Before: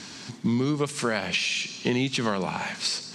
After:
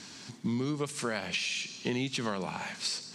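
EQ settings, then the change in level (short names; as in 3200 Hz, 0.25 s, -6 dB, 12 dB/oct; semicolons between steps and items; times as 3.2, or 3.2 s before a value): high shelf 8900 Hz +6.5 dB; -7.0 dB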